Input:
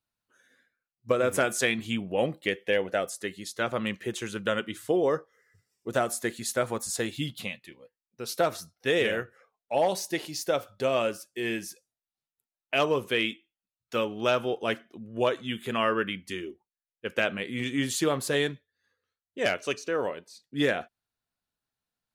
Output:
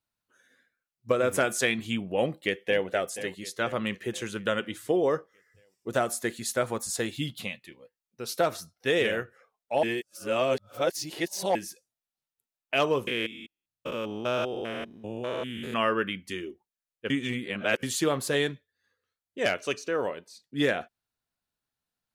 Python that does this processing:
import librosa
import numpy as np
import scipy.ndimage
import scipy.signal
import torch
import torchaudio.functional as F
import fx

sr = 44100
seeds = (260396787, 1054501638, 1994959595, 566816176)

y = fx.echo_throw(x, sr, start_s=2.21, length_s=0.65, ms=480, feedback_pct=55, wet_db=-13.0)
y = fx.spec_steps(y, sr, hold_ms=200, at=(13.07, 15.74))
y = fx.edit(y, sr, fx.reverse_span(start_s=9.83, length_s=1.72),
    fx.reverse_span(start_s=17.1, length_s=0.73), tone=tone)